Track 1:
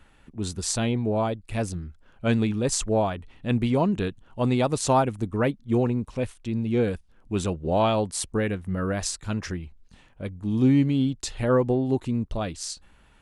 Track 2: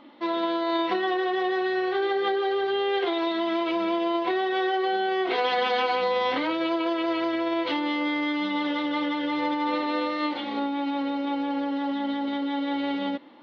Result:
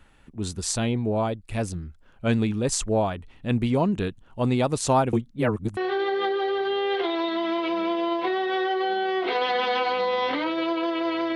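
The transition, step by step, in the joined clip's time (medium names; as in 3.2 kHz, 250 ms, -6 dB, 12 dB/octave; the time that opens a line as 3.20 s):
track 1
5.13–5.77 s: reverse
5.77 s: go over to track 2 from 1.80 s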